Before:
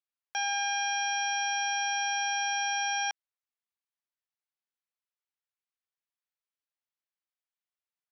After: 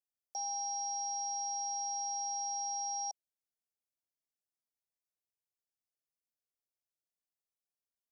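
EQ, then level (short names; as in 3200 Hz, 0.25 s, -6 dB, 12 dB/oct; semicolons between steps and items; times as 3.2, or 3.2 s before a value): elliptic band-stop 730–5000 Hz, stop band 40 dB; -2.0 dB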